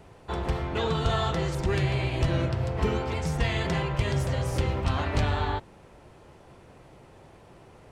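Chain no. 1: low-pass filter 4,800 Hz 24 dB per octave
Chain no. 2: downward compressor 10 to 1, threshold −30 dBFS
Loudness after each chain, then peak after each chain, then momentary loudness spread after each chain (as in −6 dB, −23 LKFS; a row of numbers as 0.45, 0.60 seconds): −28.0, −35.0 LKFS; −12.5, −20.5 dBFS; 4, 18 LU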